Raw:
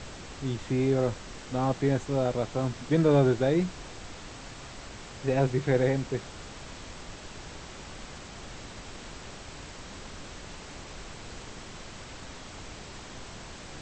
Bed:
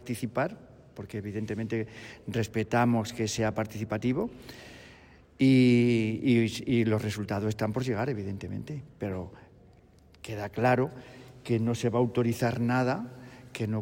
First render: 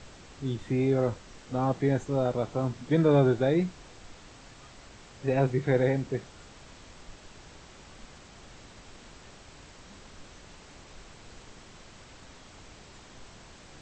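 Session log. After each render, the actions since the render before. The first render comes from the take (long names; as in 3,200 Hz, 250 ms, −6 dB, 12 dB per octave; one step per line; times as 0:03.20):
noise reduction from a noise print 7 dB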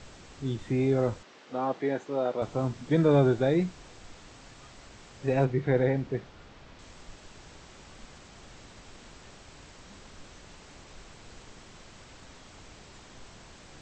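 0:01.23–0:02.42: band-pass filter 310–4,500 Hz
0:05.45–0:06.79: high-frequency loss of the air 130 metres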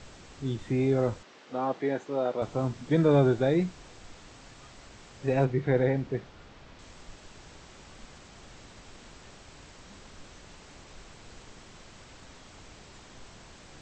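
no processing that can be heard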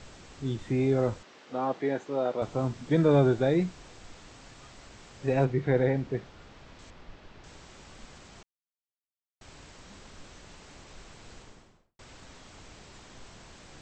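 0:06.90–0:07.44: high-frequency loss of the air 190 metres
0:08.43–0:09.41: silence
0:11.32–0:11.99: fade out and dull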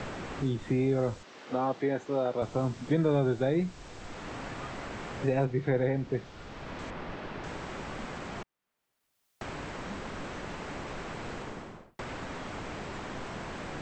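multiband upward and downward compressor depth 70%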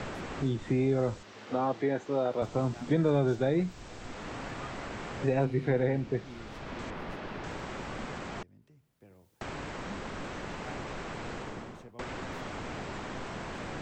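mix in bed −24 dB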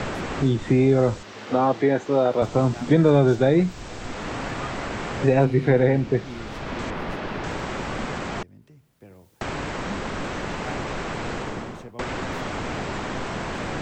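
level +9.5 dB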